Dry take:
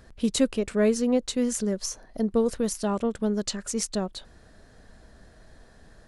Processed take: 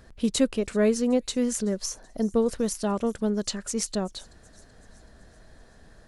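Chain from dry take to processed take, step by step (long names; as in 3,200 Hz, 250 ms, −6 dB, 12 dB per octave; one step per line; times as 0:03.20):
delay with a high-pass on its return 379 ms, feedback 54%, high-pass 5,000 Hz, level −20.5 dB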